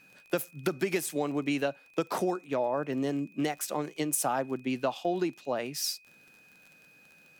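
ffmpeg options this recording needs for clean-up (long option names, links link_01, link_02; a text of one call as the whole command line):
ffmpeg -i in.wav -af "adeclick=threshold=4,bandreject=frequency=2500:width=30" out.wav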